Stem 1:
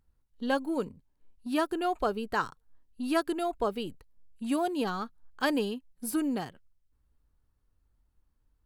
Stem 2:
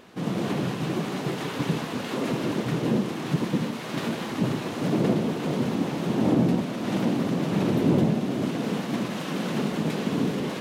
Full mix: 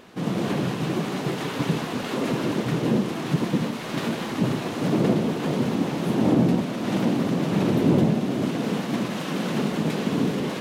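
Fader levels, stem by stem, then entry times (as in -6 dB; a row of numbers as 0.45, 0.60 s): -14.5, +2.0 dB; 0.00, 0.00 s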